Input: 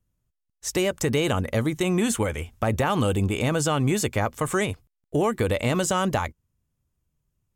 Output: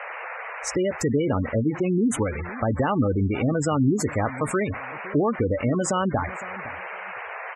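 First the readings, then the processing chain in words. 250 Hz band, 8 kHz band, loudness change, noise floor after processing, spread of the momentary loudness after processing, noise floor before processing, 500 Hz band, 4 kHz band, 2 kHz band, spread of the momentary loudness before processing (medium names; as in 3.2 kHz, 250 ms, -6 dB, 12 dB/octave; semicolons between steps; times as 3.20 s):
+2.5 dB, -3.0 dB, -0.5 dB, -36 dBFS, 11 LU, -80 dBFS, 0.0 dB, -9.0 dB, -0.5 dB, 6 LU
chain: dynamic bell 270 Hz, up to +7 dB, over -43 dBFS, Q 4.7; band noise 470–2300 Hz -35 dBFS; on a send: feedback delay 511 ms, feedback 24%, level -17 dB; on the sum: spectral gate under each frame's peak -15 dB strong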